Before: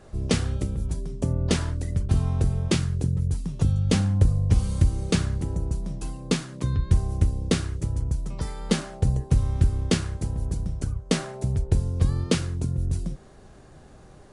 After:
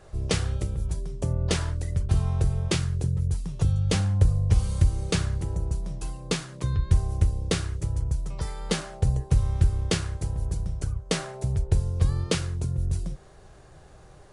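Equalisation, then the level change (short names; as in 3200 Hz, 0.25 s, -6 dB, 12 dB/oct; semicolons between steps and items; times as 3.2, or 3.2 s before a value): bell 240 Hz -11 dB 0.68 oct; 0.0 dB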